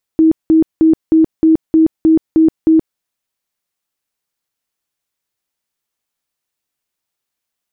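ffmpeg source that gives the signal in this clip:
-f lavfi -i "aevalsrc='0.531*sin(2*PI*320*mod(t,0.31))*lt(mod(t,0.31),40/320)':d=2.79:s=44100"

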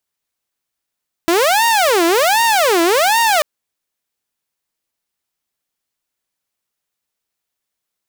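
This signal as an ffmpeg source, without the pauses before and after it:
-f lavfi -i "aevalsrc='0.376*(2*mod((631*t-299/(2*PI*1.3)*sin(2*PI*1.3*t)),1)-1)':d=2.14:s=44100"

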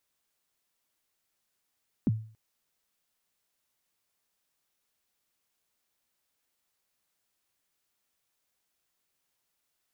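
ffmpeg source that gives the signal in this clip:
-f lavfi -i "aevalsrc='0.112*pow(10,-3*t/0.44)*sin(2*PI*(300*0.03/log(110/300)*(exp(log(110/300)*min(t,0.03)/0.03)-1)+110*max(t-0.03,0)))':d=0.28:s=44100"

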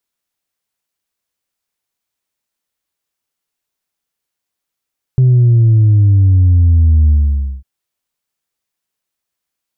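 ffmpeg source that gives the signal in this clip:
-f lavfi -i "aevalsrc='0.501*clip((2.45-t)/0.54,0,1)*tanh(1.12*sin(2*PI*130*2.45/log(65/130)*(exp(log(65/130)*t/2.45)-1)))/tanh(1.12)':d=2.45:s=44100"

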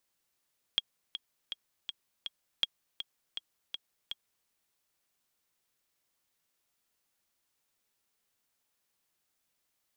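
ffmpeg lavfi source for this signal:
-f lavfi -i "aevalsrc='pow(10,(-13.5-10.5*gte(mod(t,5*60/162),60/162))/20)*sin(2*PI*3280*mod(t,60/162))*exp(-6.91*mod(t,60/162)/0.03)':d=3.7:s=44100"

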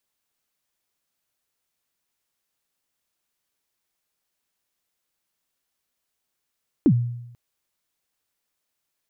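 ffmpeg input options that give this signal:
-f lavfi -i "aevalsrc='0.299*pow(10,-3*t/0.86)*sin(2*PI*(350*0.067/log(120/350)*(exp(log(120/350)*min(t,0.067)/0.067)-1)+120*max(t-0.067,0)))':d=0.49:s=44100"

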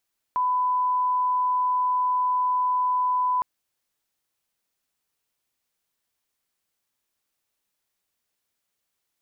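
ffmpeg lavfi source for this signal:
-f lavfi -i "sine=f=1000:d=3.06:r=44100,volume=-1.94dB"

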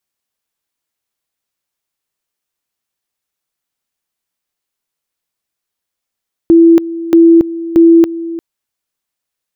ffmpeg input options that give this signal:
-f lavfi -i "aevalsrc='pow(10,(-2-16*gte(mod(t,0.63),0.28))/20)*sin(2*PI*333*t)':d=1.89:s=44100"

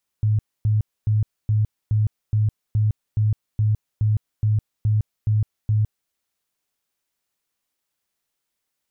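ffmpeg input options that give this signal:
-f lavfi -i "aevalsrc='0.168*sin(2*PI*107*mod(t,0.42))*lt(mod(t,0.42),17/107)':d=5.88:s=44100"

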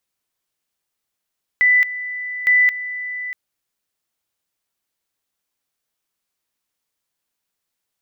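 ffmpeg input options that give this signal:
-f lavfi -i "aevalsrc='pow(10,(-10.5-14*gte(mod(t,0.86),0.22))/20)*sin(2*PI*1990*t)':d=1.72:s=44100"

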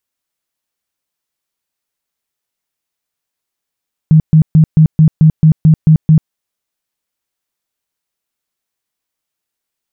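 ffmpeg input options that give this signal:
-f lavfi -i "aevalsrc='0.75*sin(2*PI*157*mod(t,0.22))*lt(mod(t,0.22),14/157)':d=2.2:s=44100"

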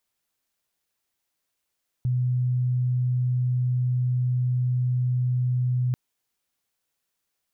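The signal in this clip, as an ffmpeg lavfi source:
-f lavfi -i "sine=f=125:d=3.89:r=44100,volume=-2.44dB"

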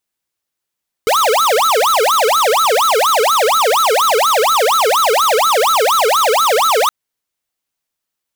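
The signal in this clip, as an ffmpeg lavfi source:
-f lavfi -i "aevalsrc='0.237*(2*lt(mod((877*t-453/(2*PI*4.2)*sin(2*PI*4.2*t)),1),0.5)-1)':d=5.82:s=44100"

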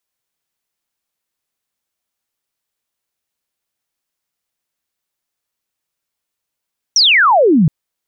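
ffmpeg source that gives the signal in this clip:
-f lavfi -i "aevalsrc='0.447*clip(t/0.002,0,1)*clip((0.72-t)/0.002,0,1)*sin(2*PI*5900*0.72/log(140/5900)*(exp(log(140/5900)*t/0.72)-1))':d=0.72:s=44100"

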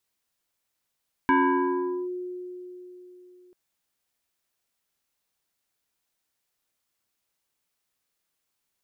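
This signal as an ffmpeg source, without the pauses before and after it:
-f lavfi -i "aevalsrc='0.158*pow(10,-3*t/3.69)*sin(2*PI*361*t+2*clip(1-t/0.8,0,1)*sin(2*PI*1.76*361*t))':d=2.24:s=44100"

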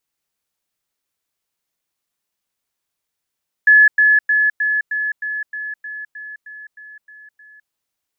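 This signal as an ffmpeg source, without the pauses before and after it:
-f lavfi -i "aevalsrc='pow(10,(-6-3*floor(t/0.31))/20)*sin(2*PI*1710*t)*clip(min(mod(t,0.31),0.21-mod(t,0.31))/0.005,0,1)':d=4.03:s=44100"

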